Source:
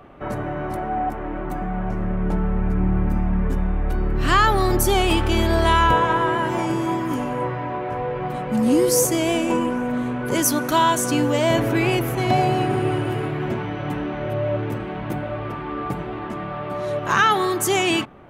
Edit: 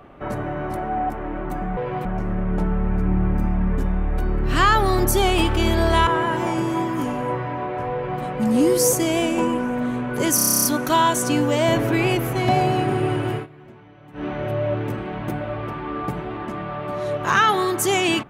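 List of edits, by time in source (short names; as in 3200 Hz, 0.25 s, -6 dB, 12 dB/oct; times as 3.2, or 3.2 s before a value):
5.79–6.19 cut
8.06–8.34 copy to 1.77
10.47 stutter 0.03 s, 11 plays
13.17–14.07 dip -19.5 dB, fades 0.12 s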